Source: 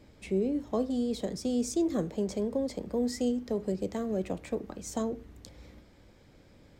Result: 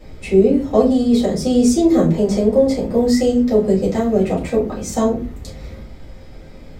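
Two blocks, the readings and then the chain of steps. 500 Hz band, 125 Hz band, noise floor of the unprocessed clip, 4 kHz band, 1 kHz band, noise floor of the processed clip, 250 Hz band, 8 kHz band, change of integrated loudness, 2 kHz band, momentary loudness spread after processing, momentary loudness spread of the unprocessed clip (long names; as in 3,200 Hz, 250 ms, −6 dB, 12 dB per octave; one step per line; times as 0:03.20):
+16.5 dB, +17.0 dB, −58 dBFS, +13.5 dB, +16.0 dB, −38 dBFS, +15.5 dB, +12.0 dB, +16.0 dB, +15.0 dB, 10 LU, 7 LU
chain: rectangular room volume 130 cubic metres, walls furnished, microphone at 4.1 metres
level +5.5 dB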